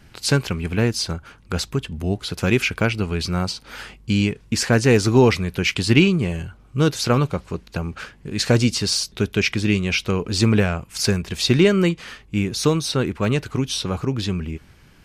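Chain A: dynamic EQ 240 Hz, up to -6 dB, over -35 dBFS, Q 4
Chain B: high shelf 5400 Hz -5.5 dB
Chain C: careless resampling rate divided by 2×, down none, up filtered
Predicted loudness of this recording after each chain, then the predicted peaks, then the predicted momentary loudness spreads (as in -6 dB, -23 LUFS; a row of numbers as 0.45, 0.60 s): -21.5, -21.0, -21.0 LUFS; -3.5, -3.0, -2.5 dBFS; 13, 14, 13 LU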